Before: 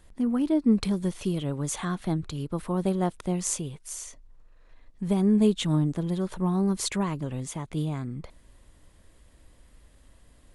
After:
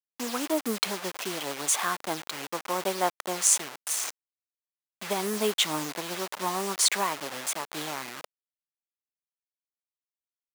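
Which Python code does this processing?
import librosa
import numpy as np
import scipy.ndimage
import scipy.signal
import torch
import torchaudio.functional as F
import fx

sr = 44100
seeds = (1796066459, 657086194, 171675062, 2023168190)

y = fx.delta_hold(x, sr, step_db=-34.5)
y = scipy.signal.sosfilt(scipy.signal.butter(2, 750.0, 'highpass', fs=sr, output='sos'), y)
y = F.gain(torch.from_numpy(y), 8.5).numpy()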